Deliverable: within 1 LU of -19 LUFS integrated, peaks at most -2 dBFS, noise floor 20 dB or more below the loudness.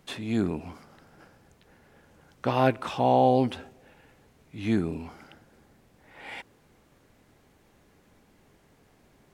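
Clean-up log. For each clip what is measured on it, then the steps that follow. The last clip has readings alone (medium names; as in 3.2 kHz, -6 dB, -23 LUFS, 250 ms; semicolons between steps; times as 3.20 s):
loudness -26.5 LUFS; peak level -7.5 dBFS; loudness target -19.0 LUFS
-> trim +7.5 dB; peak limiter -2 dBFS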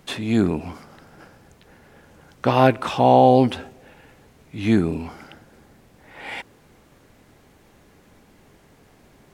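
loudness -19.0 LUFS; peak level -2.0 dBFS; noise floor -55 dBFS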